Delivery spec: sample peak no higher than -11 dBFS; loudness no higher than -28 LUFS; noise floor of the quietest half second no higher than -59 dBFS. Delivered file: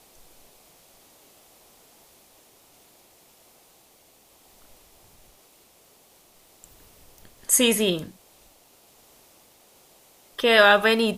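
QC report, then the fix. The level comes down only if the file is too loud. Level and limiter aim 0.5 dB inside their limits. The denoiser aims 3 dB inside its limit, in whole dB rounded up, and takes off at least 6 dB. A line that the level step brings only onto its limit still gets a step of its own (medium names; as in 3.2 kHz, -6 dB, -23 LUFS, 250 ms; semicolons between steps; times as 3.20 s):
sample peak -3.5 dBFS: fail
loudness -19.0 LUFS: fail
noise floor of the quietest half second -57 dBFS: fail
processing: trim -9.5 dB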